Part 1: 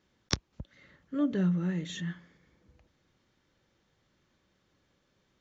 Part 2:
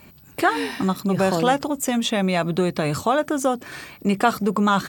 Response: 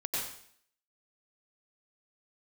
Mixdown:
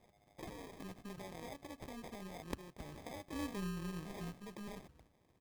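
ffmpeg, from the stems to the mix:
-filter_complex "[0:a]adelay=2200,volume=2.5dB[a];[1:a]equalizer=f=6.8k:w=0.47:g=7.5,alimiter=limit=-11.5dB:level=0:latency=1:release=14,volume=-18.5dB[b];[a][b]amix=inputs=2:normalize=0,tremolo=f=210:d=0.71,acrusher=samples=31:mix=1:aa=0.000001,acompressor=threshold=-49dB:ratio=2"

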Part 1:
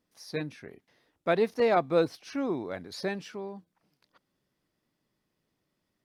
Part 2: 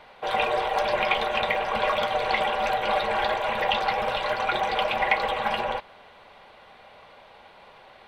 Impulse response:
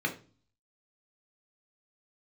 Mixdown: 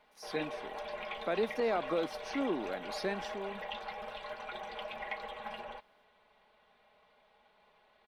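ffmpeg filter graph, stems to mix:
-filter_complex "[0:a]highpass=f=190:w=0.5412,highpass=f=190:w=1.3066,alimiter=limit=-20.5dB:level=0:latency=1:release=88,volume=-3dB[a];[1:a]aecho=1:1:4.7:0.52,volume=-18dB[b];[a][b]amix=inputs=2:normalize=0"

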